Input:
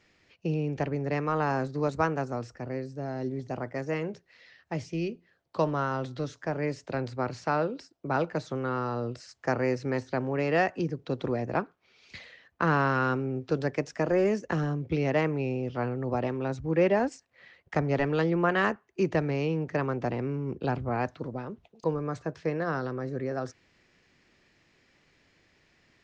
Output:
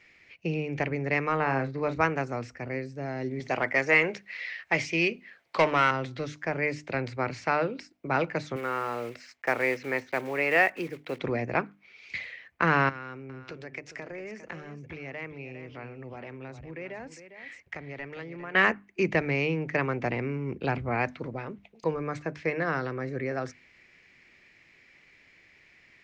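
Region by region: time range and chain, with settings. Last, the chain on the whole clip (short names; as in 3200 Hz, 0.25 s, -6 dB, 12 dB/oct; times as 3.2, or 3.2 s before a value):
1.36–2.01 air absorption 160 m + doubler 37 ms -11 dB
3.4–5.91 high shelf 4700 Hz +5 dB + overdrive pedal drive 15 dB, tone 4000 Hz, clips at -13.5 dBFS
8.56–11.2 block floating point 5-bit + tone controls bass -12 dB, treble -6 dB
12.89–18.55 compressor 3:1, threshold -43 dBFS + echo 0.404 s -11 dB
whole clip: bell 2200 Hz +13.5 dB 0.64 oct; notches 50/100/150/200/250/300 Hz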